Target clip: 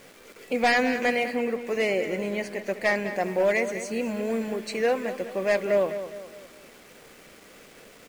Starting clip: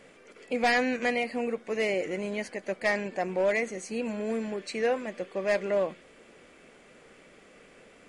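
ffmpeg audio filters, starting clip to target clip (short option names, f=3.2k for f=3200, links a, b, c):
-filter_complex "[0:a]acrusher=bits=8:mix=0:aa=0.000001,asplit=2[a][b];[b]adelay=205,lowpass=f=4.8k:p=1,volume=-11dB,asplit=2[c][d];[d]adelay=205,lowpass=f=4.8k:p=1,volume=0.43,asplit=2[e][f];[f]adelay=205,lowpass=f=4.8k:p=1,volume=0.43,asplit=2[g][h];[h]adelay=205,lowpass=f=4.8k:p=1,volume=0.43[i];[a][c][e][g][i]amix=inputs=5:normalize=0,asplit=3[j][k][l];[j]afade=t=out:st=1.32:d=0.02[m];[k]adynamicequalizer=threshold=0.00562:dfrequency=4200:dqfactor=0.7:tfrequency=4200:tqfactor=0.7:attack=5:release=100:ratio=0.375:range=2:mode=cutabove:tftype=highshelf,afade=t=in:st=1.32:d=0.02,afade=t=out:st=3.14:d=0.02[n];[l]afade=t=in:st=3.14:d=0.02[o];[m][n][o]amix=inputs=3:normalize=0,volume=3dB"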